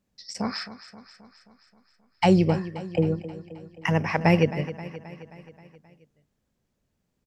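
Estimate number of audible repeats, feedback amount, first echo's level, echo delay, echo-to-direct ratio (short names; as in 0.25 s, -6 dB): 5, 59%, -14.5 dB, 0.265 s, -12.5 dB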